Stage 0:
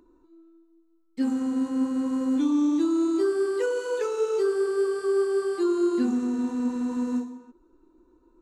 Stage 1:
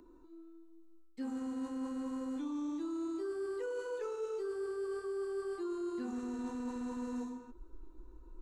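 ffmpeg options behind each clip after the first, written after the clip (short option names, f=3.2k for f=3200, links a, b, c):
-filter_complex "[0:a]acrossover=split=360|1800[a][b][c];[a]acompressor=threshold=-29dB:ratio=4[d];[b]acompressor=threshold=-29dB:ratio=4[e];[c]acompressor=threshold=-52dB:ratio=4[f];[d][e][f]amix=inputs=3:normalize=0,asubboost=boost=7.5:cutoff=78,areverse,acompressor=threshold=-37dB:ratio=6,areverse"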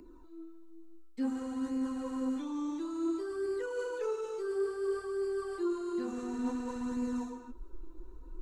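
-af "flanger=delay=0.4:depth=5.5:regen=33:speed=0.57:shape=sinusoidal,volume=8dB"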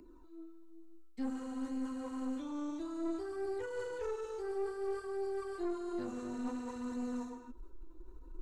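-af "aeval=exprs='(tanh(31.6*val(0)+0.55)-tanh(0.55))/31.6':c=same,volume=-1dB"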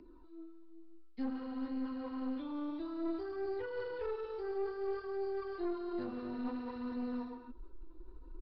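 -af "aresample=11025,aresample=44100"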